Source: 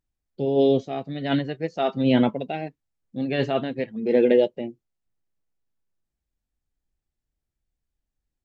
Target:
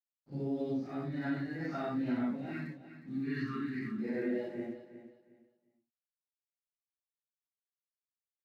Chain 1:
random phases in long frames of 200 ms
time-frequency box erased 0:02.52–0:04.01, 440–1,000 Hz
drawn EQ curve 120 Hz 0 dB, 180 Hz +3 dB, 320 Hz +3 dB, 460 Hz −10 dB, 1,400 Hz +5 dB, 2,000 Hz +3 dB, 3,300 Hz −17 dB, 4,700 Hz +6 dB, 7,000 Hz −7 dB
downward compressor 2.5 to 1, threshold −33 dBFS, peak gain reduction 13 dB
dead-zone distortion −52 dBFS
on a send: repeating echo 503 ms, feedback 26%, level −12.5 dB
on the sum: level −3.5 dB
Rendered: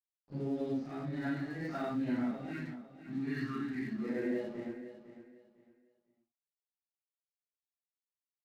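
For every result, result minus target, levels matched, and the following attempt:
echo 142 ms late; dead-zone distortion: distortion +10 dB
random phases in long frames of 200 ms
time-frequency box erased 0:02.52–0:04.01, 440–1,000 Hz
drawn EQ curve 120 Hz 0 dB, 180 Hz +3 dB, 320 Hz +3 dB, 460 Hz −10 dB, 1,400 Hz +5 dB, 2,000 Hz +3 dB, 3,300 Hz −17 dB, 4,700 Hz +6 dB, 7,000 Hz −7 dB
downward compressor 2.5 to 1, threshold −33 dBFS, peak gain reduction 13 dB
dead-zone distortion −52 dBFS
on a send: repeating echo 361 ms, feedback 26%, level −12.5 dB
on the sum: level −3.5 dB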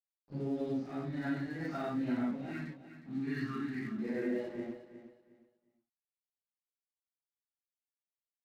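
dead-zone distortion: distortion +10 dB
random phases in long frames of 200 ms
time-frequency box erased 0:02.52–0:04.01, 440–1,000 Hz
drawn EQ curve 120 Hz 0 dB, 180 Hz +3 dB, 320 Hz +3 dB, 460 Hz −10 dB, 1,400 Hz +5 dB, 2,000 Hz +3 dB, 3,300 Hz −17 dB, 4,700 Hz +6 dB, 7,000 Hz −7 dB
downward compressor 2.5 to 1, threshold −33 dBFS, peak gain reduction 13 dB
dead-zone distortion −62.5 dBFS
on a send: repeating echo 361 ms, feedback 26%, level −12.5 dB
on the sum: level −3.5 dB

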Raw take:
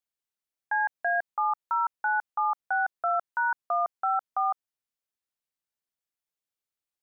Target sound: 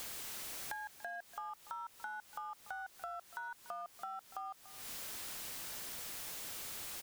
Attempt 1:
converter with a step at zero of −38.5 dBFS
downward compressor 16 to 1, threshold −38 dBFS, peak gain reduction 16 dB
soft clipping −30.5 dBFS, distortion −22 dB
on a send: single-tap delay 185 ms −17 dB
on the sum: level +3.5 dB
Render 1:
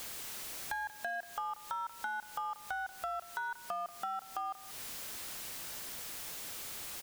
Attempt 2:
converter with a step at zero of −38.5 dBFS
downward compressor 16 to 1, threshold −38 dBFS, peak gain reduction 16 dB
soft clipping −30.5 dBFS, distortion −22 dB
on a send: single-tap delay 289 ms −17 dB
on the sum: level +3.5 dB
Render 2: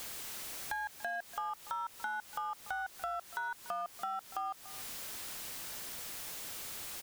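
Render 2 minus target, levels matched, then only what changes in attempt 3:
downward compressor: peak gain reduction −7 dB
change: downward compressor 16 to 1, threshold −45.5 dBFS, peak gain reduction 23 dB

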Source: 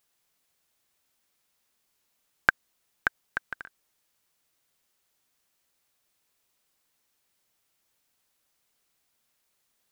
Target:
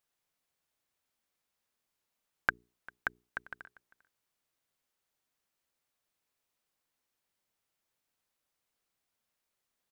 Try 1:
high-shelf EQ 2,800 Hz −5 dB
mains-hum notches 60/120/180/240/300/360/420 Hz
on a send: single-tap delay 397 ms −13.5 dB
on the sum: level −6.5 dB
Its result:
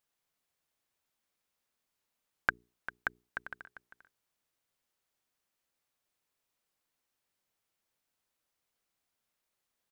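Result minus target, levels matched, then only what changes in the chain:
echo-to-direct +9 dB
change: single-tap delay 397 ms −22.5 dB

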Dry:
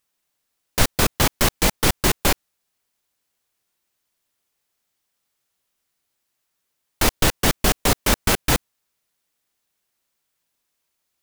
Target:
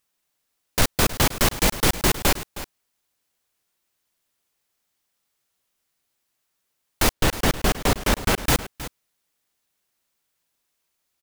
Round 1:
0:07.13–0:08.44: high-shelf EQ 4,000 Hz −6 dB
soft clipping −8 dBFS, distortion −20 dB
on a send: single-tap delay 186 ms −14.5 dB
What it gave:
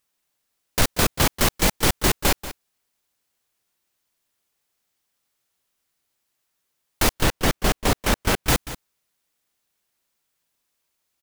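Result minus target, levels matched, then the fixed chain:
echo 129 ms early
0:07.13–0:08.44: high-shelf EQ 4,000 Hz −6 dB
soft clipping −8 dBFS, distortion −20 dB
on a send: single-tap delay 315 ms −14.5 dB

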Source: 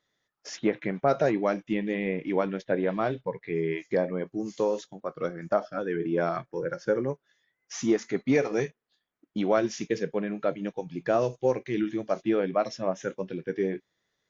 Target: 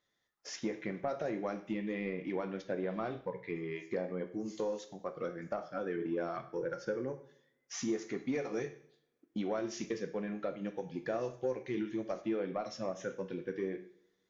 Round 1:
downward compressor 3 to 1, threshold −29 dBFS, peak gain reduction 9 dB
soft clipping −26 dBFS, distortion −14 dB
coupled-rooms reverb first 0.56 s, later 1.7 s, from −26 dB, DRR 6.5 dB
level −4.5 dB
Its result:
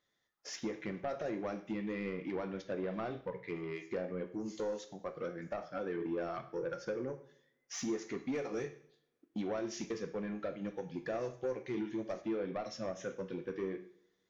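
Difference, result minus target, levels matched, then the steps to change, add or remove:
soft clipping: distortion +10 dB
change: soft clipping −18.5 dBFS, distortion −25 dB

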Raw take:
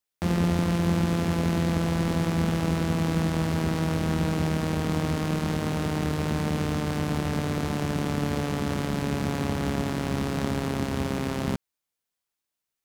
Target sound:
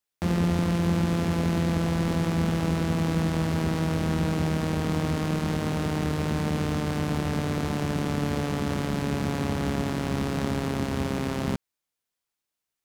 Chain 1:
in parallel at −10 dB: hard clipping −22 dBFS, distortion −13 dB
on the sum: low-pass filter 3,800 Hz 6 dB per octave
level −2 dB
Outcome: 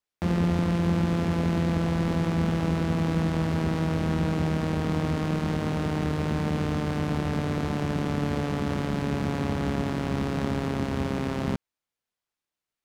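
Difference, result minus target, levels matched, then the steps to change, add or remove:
8,000 Hz band −5.5 dB
change: low-pass filter 15,000 Hz 6 dB per octave

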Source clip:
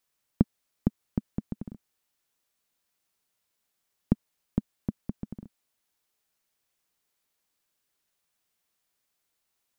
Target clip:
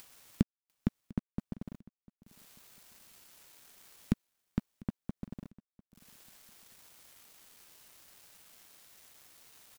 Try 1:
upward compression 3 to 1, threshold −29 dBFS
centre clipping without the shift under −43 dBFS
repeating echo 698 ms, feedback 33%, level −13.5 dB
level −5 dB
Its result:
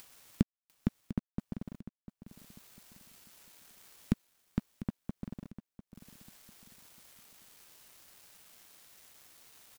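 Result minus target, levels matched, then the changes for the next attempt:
echo-to-direct +9 dB
change: repeating echo 698 ms, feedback 33%, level −22.5 dB

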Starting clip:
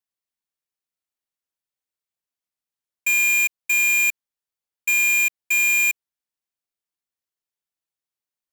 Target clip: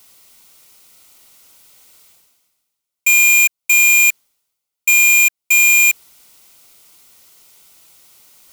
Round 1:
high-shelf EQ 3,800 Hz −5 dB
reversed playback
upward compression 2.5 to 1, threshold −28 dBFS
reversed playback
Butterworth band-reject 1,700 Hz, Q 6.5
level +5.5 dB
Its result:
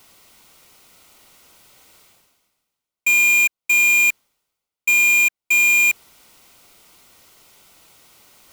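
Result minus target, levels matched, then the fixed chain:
8,000 Hz band −4.0 dB
high-shelf EQ 3,800 Hz +5 dB
reversed playback
upward compression 2.5 to 1, threshold −28 dBFS
reversed playback
Butterworth band-reject 1,700 Hz, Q 6.5
level +5.5 dB

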